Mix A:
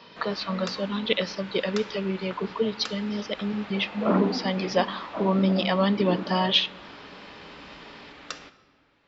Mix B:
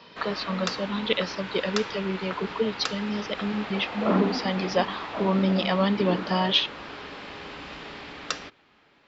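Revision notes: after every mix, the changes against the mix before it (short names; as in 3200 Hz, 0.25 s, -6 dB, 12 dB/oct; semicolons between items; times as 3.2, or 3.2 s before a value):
background +8.0 dB; reverb: off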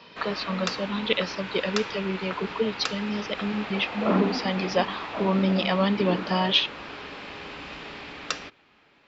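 master: add bell 2500 Hz +3.5 dB 0.31 oct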